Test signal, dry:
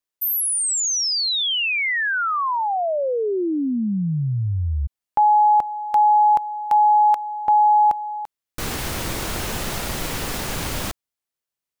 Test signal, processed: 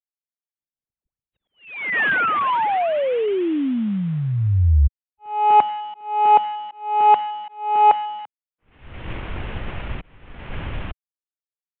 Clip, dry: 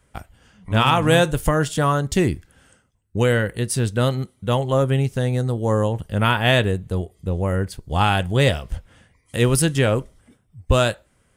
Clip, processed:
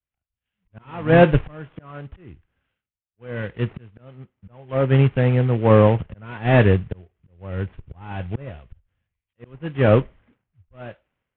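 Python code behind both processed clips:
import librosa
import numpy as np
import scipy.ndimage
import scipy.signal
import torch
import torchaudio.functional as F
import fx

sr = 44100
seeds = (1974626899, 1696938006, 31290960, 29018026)

y = fx.cvsd(x, sr, bps=16000)
y = fx.auto_swell(y, sr, attack_ms=520.0)
y = fx.band_widen(y, sr, depth_pct=100)
y = y * 10.0 ** (2.0 / 20.0)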